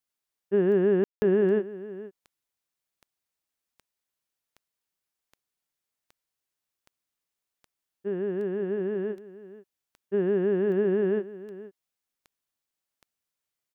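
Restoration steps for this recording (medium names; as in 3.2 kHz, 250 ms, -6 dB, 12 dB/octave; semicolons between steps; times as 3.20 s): de-click; room tone fill 1.04–1.22 s; inverse comb 479 ms -16.5 dB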